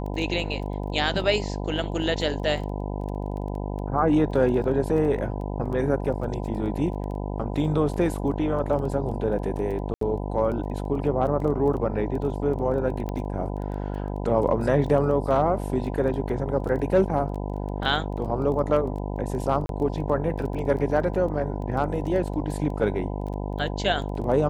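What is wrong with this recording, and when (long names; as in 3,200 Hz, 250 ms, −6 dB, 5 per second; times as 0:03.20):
mains buzz 50 Hz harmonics 20 −30 dBFS
surface crackle 11 per second −33 dBFS
0:09.94–0:10.01: drop-out 73 ms
0:13.09: click −19 dBFS
0:19.66–0:19.69: drop-out 32 ms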